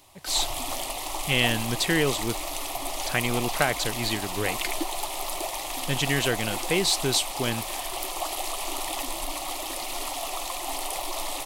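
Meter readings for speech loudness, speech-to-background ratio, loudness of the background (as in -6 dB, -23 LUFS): -26.5 LUFS, 4.5 dB, -31.0 LUFS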